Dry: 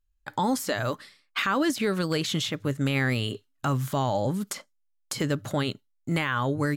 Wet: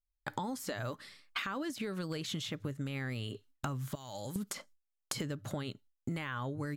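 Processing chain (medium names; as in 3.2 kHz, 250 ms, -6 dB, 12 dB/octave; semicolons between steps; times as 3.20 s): 3.95–4.36 s: pre-emphasis filter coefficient 0.9; gate with hold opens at -57 dBFS; bass shelf 170 Hz +4.5 dB; compression 16:1, threshold -37 dBFS, peak gain reduction 18 dB; trim +2.5 dB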